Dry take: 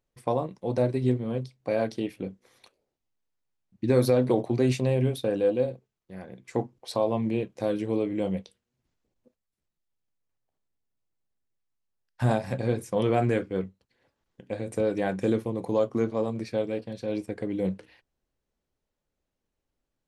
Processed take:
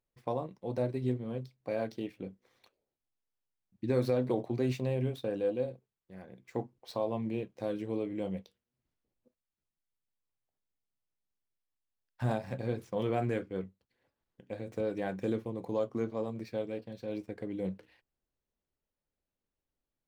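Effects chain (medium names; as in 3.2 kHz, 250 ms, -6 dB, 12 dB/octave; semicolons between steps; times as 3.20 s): median filter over 5 samples; trim -7.5 dB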